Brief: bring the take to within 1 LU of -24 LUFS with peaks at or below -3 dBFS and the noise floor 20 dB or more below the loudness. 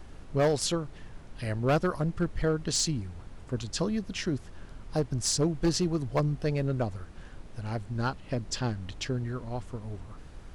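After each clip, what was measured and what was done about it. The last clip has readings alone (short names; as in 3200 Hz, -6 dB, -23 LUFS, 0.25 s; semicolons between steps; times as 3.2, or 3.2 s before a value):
clipped 0.9%; flat tops at -19.5 dBFS; noise floor -47 dBFS; noise floor target -51 dBFS; loudness -30.5 LUFS; peak -19.5 dBFS; loudness target -24.0 LUFS
-> clip repair -19.5 dBFS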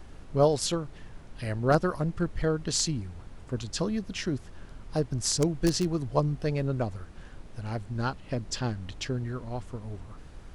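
clipped 0.0%; noise floor -47 dBFS; noise floor target -50 dBFS
-> noise print and reduce 6 dB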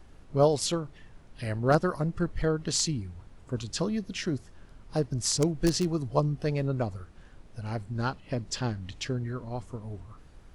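noise floor -52 dBFS; loudness -30.0 LUFS; peak -10.5 dBFS; loudness target -24.0 LUFS
-> gain +6 dB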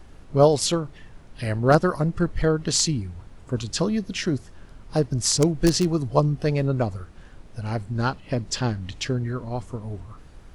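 loudness -24.0 LUFS; peak -4.5 dBFS; noise floor -46 dBFS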